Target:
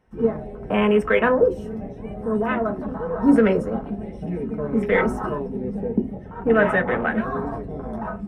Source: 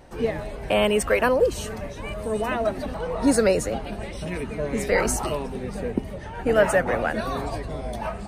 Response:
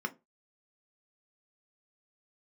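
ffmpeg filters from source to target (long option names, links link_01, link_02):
-filter_complex "[0:a]afwtdn=0.0316[link_01];[1:a]atrim=start_sample=2205[link_02];[link_01][link_02]afir=irnorm=-1:irlink=0,volume=-1.5dB"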